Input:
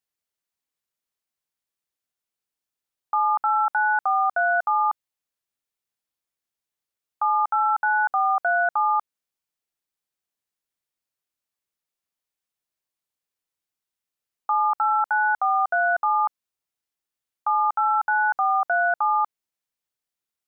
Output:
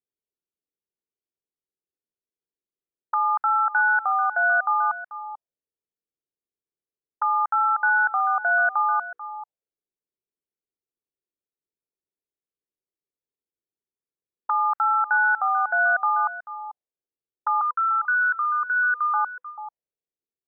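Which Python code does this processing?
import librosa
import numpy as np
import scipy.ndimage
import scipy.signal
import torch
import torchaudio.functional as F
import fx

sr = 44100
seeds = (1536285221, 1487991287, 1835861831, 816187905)

y = fx.hum_notches(x, sr, base_hz=60, count=8, at=(8.34, 8.88), fade=0.02)
y = fx.cheby1_bandstop(y, sr, low_hz=500.0, high_hz=1000.0, order=5, at=(17.61, 19.14))
y = y + 10.0 ** (-15.0 / 20.0) * np.pad(y, (int(439 * sr / 1000.0), 0))[:len(y)]
y = fx.envelope_lowpass(y, sr, base_hz=410.0, top_hz=1600.0, q=2.9, full_db=-27.5, direction='up')
y = y * 10.0 ** (-5.5 / 20.0)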